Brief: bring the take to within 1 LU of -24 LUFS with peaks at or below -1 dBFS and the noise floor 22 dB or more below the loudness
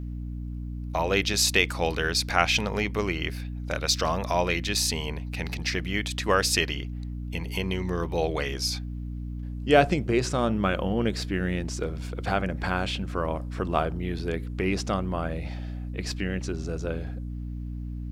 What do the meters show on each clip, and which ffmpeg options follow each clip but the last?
hum 60 Hz; highest harmonic 300 Hz; hum level -31 dBFS; loudness -27.5 LUFS; peak level -3.0 dBFS; loudness target -24.0 LUFS
-> -af "bandreject=f=60:t=h:w=6,bandreject=f=120:t=h:w=6,bandreject=f=180:t=h:w=6,bandreject=f=240:t=h:w=6,bandreject=f=300:t=h:w=6"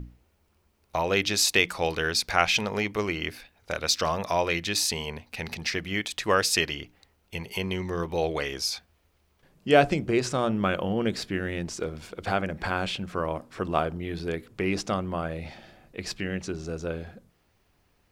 hum not found; loudness -27.5 LUFS; peak level -3.5 dBFS; loudness target -24.0 LUFS
-> -af "volume=1.5,alimiter=limit=0.891:level=0:latency=1"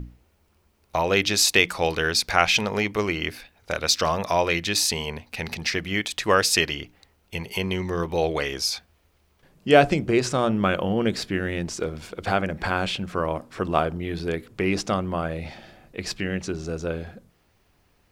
loudness -24.0 LUFS; peak level -1.0 dBFS; noise floor -64 dBFS

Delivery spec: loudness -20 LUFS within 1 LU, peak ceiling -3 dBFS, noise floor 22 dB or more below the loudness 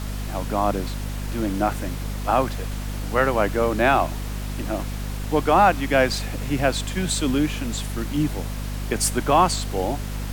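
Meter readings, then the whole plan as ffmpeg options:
hum 50 Hz; highest harmonic 250 Hz; hum level -27 dBFS; noise floor -30 dBFS; noise floor target -46 dBFS; loudness -23.5 LUFS; peak level -4.5 dBFS; loudness target -20.0 LUFS
-> -af "bandreject=f=50:t=h:w=4,bandreject=f=100:t=h:w=4,bandreject=f=150:t=h:w=4,bandreject=f=200:t=h:w=4,bandreject=f=250:t=h:w=4"
-af "afftdn=nr=16:nf=-30"
-af "volume=1.5,alimiter=limit=0.708:level=0:latency=1"

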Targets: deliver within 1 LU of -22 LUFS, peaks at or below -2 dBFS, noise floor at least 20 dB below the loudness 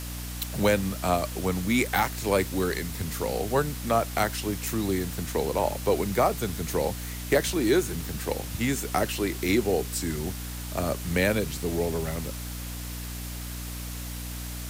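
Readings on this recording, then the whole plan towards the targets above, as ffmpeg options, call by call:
hum 60 Hz; highest harmonic 300 Hz; hum level -34 dBFS; noise floor -36 dBFS; noise floor target -48 dBFS; loudness -28.0 LUFS; peak level -10.5 dBFS; loudness target -22.0 LUFS
-> -af "bandreject=f=60:t=h:w=4,bandreject=f=120:t=h:w=4,bandreject=f=180:t=h:w=4,bandreject=f=240:t=h:w=4,bandreject=f=300:t=h:w=4"
-af "afftdn=nr=12:nf=-36"
-af "volume=2"

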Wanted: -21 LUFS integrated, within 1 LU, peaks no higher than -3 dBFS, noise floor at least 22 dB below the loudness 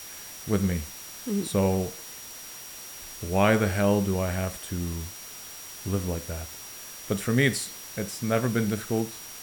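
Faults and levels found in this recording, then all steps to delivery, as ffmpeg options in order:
steady tone 5.7 kHz; tone level -45 dBFS; noise floor -42 dBFS; noise floor target -50 dBFS; loudness -27.5 LUFS; peak level -7.0 dBFS; loudness target -21.0 LUFS
-> -af "bandreject=f=5700:w=30"
-af "afftdn=nr=8:nf=-42"
-af "volume=2.11,alimiter=limit=0.708:level=0:latency=1"

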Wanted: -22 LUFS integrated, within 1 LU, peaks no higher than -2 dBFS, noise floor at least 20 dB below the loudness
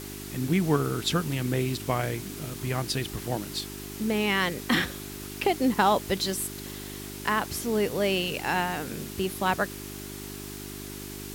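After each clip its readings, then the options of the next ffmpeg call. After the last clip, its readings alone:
hum 50 Hz; highest harmonic 400 Hz; hum level -39 dBFS; noise floor -39 dBFS; noise floor target -49 dBFS; loudness -28.5 LUFS; peak level -10.0 dBFS; loudness target -22.0 LUFS
-> -af "bandreject=f=50:t=h:w=4,bandreject=f=100:t=h:w=4,bandreject=f=150:t=h:w=4,bandreject=f=200:t=h:w=4,bandreject=f=250:t=h:w=4,bandreject=f=300:t=h:w=4,bandreject=f=350:t=h:w=4,bandreject=f=400:t=h:w=4"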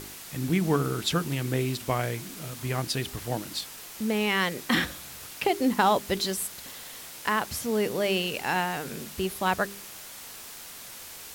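hum not found; noise floor -43 dBFS; noise floor target -48 dBFS
-> -af "afftdn=nr=6:nf=-43"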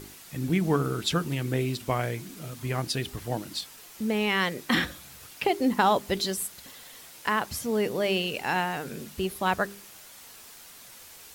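noise floor -49 dBFS; loudness -28.5 LUFS; peak level -10.5 dBFS; loudness target -22.0 LUFS
-> -af "volume=2.11"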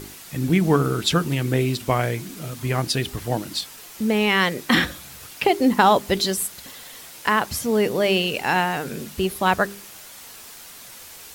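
loudness -22.0 LUFS; peak level -4.0 dBFS; noise floor -42 dBFS

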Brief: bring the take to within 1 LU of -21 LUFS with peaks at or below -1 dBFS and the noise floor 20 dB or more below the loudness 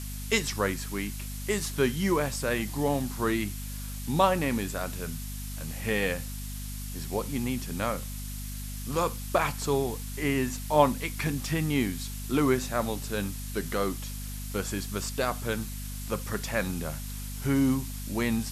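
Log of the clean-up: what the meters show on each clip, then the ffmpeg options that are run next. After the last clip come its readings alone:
hum 50 Hz; highest harmonic 250 Hz; hum level -35 dBFS; noise floor -37 dBFS; noise floor target -50 dBFS; loudness -30.0 LUFS; peak level -6.5 dBFS; loudness target -21.0 LUFS
-> -af "bandreject=f=50:t=h:w=6,bandreject=f=100:t=h:w=6,bandreject=f=150:t=h:w=6,bandreject=f=200:t=h:w=6,bandreject=f=250:t=h:w=6"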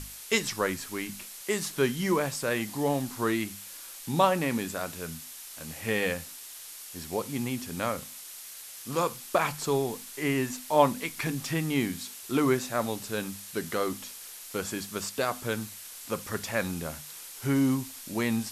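hum not found; noise floor -44 dBFS; noise floor target -50 dBFS
-> -af "afftdn=nr=6:nf=-44"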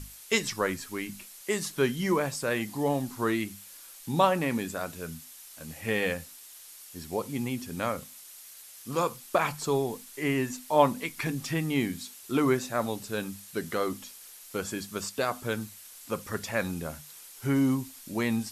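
noise floor -49 dBFS; noise floor target -50 dBFS
-> -af "afftdn=nr=6:nf=-49"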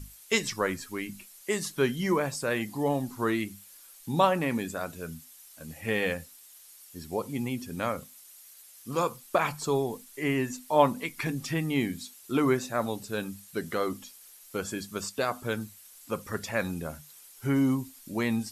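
noise floor -53 dBFS; loudness -30.0 LUFS; peak level -6.5 dBFS; loudness target -21.0 LUFS
-> -af "volume=2.82,alimiter=limit=0.891:level=0:latency=1"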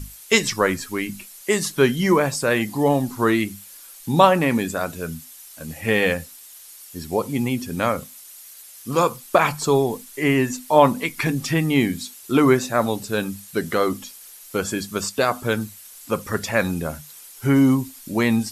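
loudness -21.5 LUFS; peak level -1.0 dBFS; noise floor -44 dBFS

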